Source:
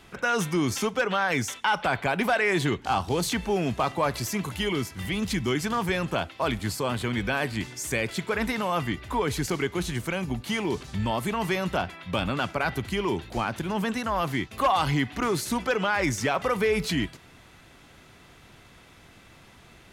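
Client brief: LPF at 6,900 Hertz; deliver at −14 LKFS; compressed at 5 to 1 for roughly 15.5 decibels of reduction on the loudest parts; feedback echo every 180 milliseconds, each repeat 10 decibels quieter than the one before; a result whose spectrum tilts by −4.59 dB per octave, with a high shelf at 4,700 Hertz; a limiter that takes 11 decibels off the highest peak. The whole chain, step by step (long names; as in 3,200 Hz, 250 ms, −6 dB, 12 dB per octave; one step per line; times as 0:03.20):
low-pass filter 6,900 Hz
high-shelf EQ 4,700 Hz −8 dB
downward compressor 5 to 1, threshold −38 dBFS
brickwall limiter −32 dBFS
repeating echo 180 ms, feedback 32%, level −10 dB
level +28 dB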